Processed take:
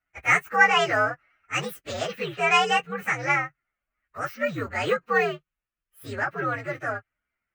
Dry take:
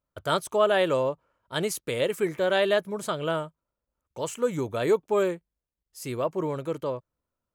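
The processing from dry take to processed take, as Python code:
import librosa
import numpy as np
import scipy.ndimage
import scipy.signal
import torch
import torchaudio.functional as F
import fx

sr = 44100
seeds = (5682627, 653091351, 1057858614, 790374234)

y = fx.partial_stretch(x, sr, pct=126)
y = fx.band_shelf(y, sr, hz=1800.0, db=13.5, octaves=1.7)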